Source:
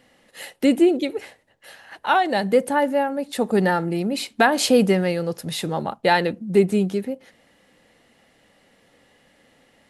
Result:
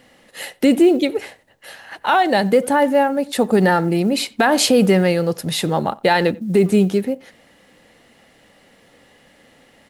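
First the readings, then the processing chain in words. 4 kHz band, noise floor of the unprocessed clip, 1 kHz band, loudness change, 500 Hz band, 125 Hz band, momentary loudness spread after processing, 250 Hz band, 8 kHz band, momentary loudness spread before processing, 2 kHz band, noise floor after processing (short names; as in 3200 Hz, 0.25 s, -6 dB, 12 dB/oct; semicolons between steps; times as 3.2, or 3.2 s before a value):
+4.5 dB, -60 dBFS, +3.5 dB, +4.0 dB, +4.0 dB, +5.5 dB, 10 LU, +4.5 dB, +5.5 dB, 11 LU, +2.5 dB, -54 dBFS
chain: speakerphone echo 90 ms, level -24 dB; companded quantiser 8-bit; maximiser +10.5 dB; gain -4.5 dB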